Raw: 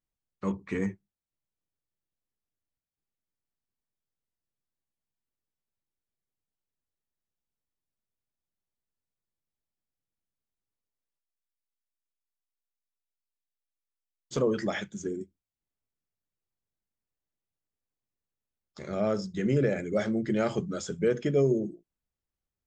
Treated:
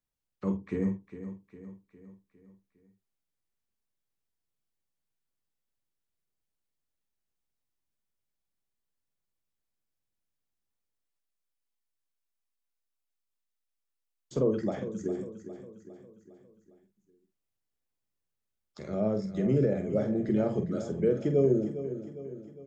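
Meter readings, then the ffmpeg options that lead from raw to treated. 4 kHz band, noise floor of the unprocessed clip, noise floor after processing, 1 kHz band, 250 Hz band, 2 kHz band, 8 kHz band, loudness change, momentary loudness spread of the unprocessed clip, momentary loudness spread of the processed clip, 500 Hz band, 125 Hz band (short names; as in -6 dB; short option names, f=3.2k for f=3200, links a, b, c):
under -10 dB, under -85 dBFS, -84 dBFS, -5.0 dB, +1.0 dB, -11.0 dB, under -10 dB, -0.5 dB, 11 LU, 19 LU, 0.0 dB, +1.0 dB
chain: -filter_complex "[0:a]acrossover=split=190|810[a][b][c];[c]acompressor=threshold=-52dB:ratio=6[d];[a][b][d]amix=inputs=3:normalize=0,asplit=2[e][f];[f]adelay=47,volume=-8dB[g];[e][g]amix=inputs=2:normalize=0,aecho=1:1:406|812|1218|1624|2030:0.251|0.128|0.0653|0.0333|0.017"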